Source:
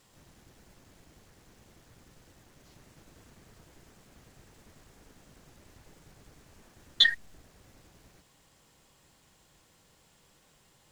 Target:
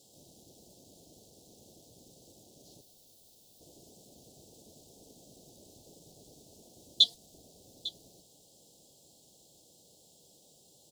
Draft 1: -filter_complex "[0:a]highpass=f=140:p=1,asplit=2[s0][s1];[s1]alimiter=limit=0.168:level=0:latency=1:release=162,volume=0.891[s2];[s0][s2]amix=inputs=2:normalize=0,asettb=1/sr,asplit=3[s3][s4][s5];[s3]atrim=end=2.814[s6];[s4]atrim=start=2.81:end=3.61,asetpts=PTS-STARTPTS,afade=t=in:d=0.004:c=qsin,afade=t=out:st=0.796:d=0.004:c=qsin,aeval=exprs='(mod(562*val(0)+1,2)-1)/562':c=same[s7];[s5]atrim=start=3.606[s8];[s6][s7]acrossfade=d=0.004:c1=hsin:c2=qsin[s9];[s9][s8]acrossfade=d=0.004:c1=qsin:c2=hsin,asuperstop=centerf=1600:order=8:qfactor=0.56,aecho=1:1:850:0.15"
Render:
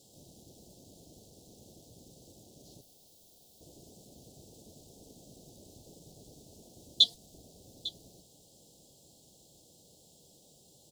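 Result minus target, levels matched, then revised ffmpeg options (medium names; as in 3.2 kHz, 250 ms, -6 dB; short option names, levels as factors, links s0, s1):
125 Hz band +5.0 dB
-filter_complex "[0:a]highpass=f=310:p=1,asplit=2[s0][s1];[s1]alimiter=limit=0.168:level=0:latency=1:release=162,volume=0.891[s2];[s0][s2]amix=inputs=2:normalize=0,asettb=1/sr,asplit=3[s3][s4][s5];[s3]atrim=end=2.814[s6];[s4]atrim=start=2.81:end=3.61,asetpts=PTS-STARTPTS,afade=t=in:d=0.004:c=qsin,afade=t=out:st=0.796:d=0.004:c=qsin,aeval=exprs='(mod(562*val(0)+1,2)-1)/562':c=same[s7];[s5]atrim=start=3.606[s8];[s6][s7]acrossfade=d=0.004:c1=hsin:c2=qsin[s9];[s9][s8]acrossfade=d=0.004:c1=qsin:c2=hsin,asuperstop=centerf=1600:order=8:qfactor=0.56,aecho=1:1:850:0.15"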